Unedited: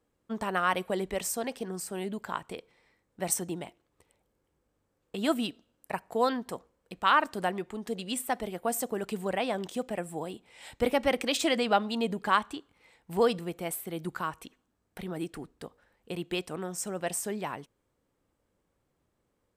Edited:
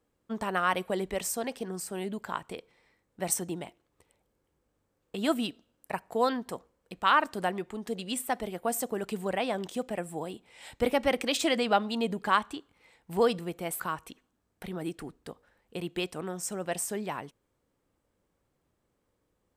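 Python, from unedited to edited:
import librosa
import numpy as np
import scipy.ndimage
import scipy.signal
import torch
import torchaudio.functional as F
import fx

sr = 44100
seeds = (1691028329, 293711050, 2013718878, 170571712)

y = fx.edit(x, sr, fx.cut(start_s=13.8, length_s=0.35), tone=tone)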